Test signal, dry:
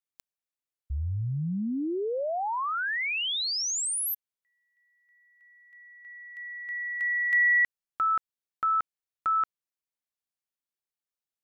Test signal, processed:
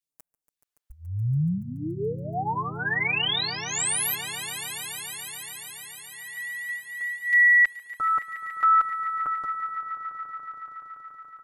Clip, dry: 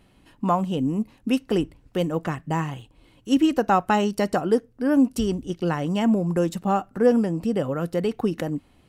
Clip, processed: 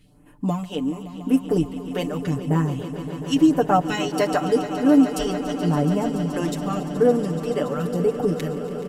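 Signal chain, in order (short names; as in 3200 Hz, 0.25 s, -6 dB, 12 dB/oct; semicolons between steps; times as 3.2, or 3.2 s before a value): comb 6.8 ms, depth 89%; phaser stages 2, 0.89 Hz, lowest notch 110–4200 Hz; swelling echo 0.142 s, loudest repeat 5, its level -15 dB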